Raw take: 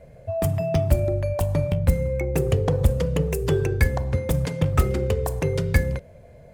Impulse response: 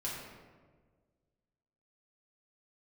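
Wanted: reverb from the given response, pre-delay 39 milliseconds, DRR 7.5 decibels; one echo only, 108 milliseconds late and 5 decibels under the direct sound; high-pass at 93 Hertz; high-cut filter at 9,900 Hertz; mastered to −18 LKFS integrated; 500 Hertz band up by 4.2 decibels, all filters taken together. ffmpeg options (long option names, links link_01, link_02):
-filter_complex "[0:a]highpass=93,lowpass=9900,equalizer=frequency=500:width_type=o:gain=5,aecho=1:1:108:0.562,asplit=2[link_01][link_02];[1:a]atrim=start_sample=2205,adelay=39[link_03];[link_02][link_03]afir=irnorm=-1:irlink=0,volume=-10dB[link_04];[link_01][link_04]amix=inputs=2:normalize=0,volume=3.5dB"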